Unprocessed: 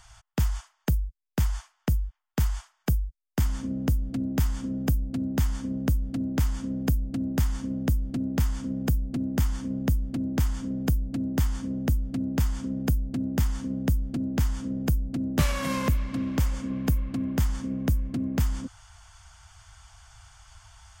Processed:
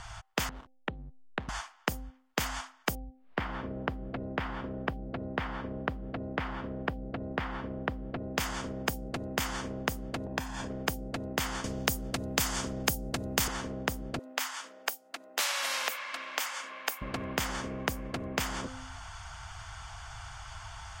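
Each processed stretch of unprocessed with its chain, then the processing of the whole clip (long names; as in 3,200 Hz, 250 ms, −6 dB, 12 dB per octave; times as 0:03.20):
0:00.49–0:01.49: Butterworth low-pass 4,100 Hz 96 dB per octave + downward compressor 5 to 1, threshold −39 dBFS + slack as between gear wheels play −46 dBFS
0:02.95–0:08.35: high-frequency loss of the air 420 metres + upward compression, threshold −41 dBFS
0:10.26–0:10.70: comb filter 1.2 ms, depth 56% + downward compressor, threshold −29 dBFS
0:11.64–0:13.48: bass and treble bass +9 dB, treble +9 dB + multiband upward and downward compressor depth 40%
0:14.19–0:17.02: Bessel high-pass filter 1,200 Hz, order 4 + high-shelf EQ 10,000 Hz +4 dB
whole clip: low-pass filter 2,600 Hz 6 dB per octave; hum removal 259.6 Hz, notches 3; every bin compressed towards the loudest bin 4 to 1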